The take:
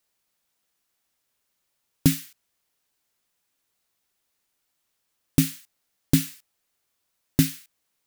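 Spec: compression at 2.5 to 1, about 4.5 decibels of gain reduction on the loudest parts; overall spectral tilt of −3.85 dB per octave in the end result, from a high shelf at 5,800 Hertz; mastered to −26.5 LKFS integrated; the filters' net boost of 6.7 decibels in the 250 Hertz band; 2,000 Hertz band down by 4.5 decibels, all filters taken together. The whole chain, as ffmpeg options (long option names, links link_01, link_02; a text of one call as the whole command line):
ffmpeg -i in.wav -af "equalizer=frequency=250:width_type=o:gain=8,equalizer=frequency=2000:width_type=o:gain=-7,highshelf=frequency=5800:gain=8,acompressor=threshold=-14dB:ratio=2.5,volume=-3dB" out.wav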